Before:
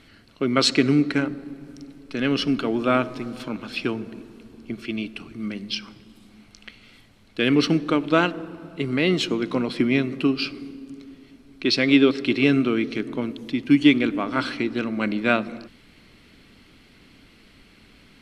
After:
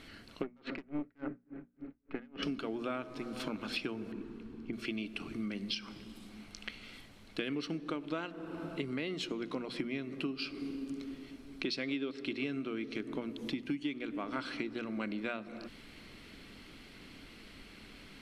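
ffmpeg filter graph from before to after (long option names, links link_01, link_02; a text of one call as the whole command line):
ffmpeg -i in.wav -filter_complex "[0:a]asettb=1/sr,asplit=3[link_01][link_02][link_03];[link_01]atrim=end=0.434[link_04];[link_02]atrim=start=0.43:end=2.43,asetpts=PTS-STARTPTS,afade=type=in:duration=0.004:curve=qsin,afade=type=out:start_time=1.996:duration=0.004:curve=qsin,lowpass=frequency=2200:width=0.5412,lowpass=frequency=2200:width=1.3066,aeval=exprs='(tanh(7.08*val(0)+0.45)-tanh(0.45))/7.08':channel_layout=same,aeval=exprs='val(0)*pow(10,-39*(0.5-0.5*cos(2*PI*3.5*n/s))/20)':channel_layout=same[link_05];[link_03]atrim=start=2.426[link_06];[link_04][link_05]acrossfade=duration=0.004:curve1=hsin:curve2=qsin[link_07];[link_07][link_06]acrossfade=duration=0.004:curve1=qsin:curve2=hsin,asettb=1/sr,asplit=3[link_08][link_09][link_10];[link_08]atrim=end=4.124[link_11];[link_09]atrim=start=4.12:end=4.73,asetpts=PTS-STARTPTS,afade=type=in:duration=0.004:curve=qsin,afade=type=out:start_time=0.606:duration=0.004:curve=qsin,lowpass=frequency=1400:poles=1,equalizer=frequency=610:width=2.2:gain=-10.5[link_12];[link_10]atrim=start=4.726[link_13];[link_11][link_12]acrossfade=duration=0.004:curve1=hsin:curve2=qsin[link_14];[link_14][link_13]acrossfade=duration=0.004:curve1=qsin:curve2=hsin,acompressor=threshold=-34dB:ratio=8,equalizer=frequency=110:width=1.7:gain=-3.5,bandreject=frequency=60:width_type=h:width=6,bandreject=frequency=120:width_type=h:width=6,bandreject=frequency=180:width_type=h:width=6,bandreject=frequency=240:width_type=h:width=6" out.wav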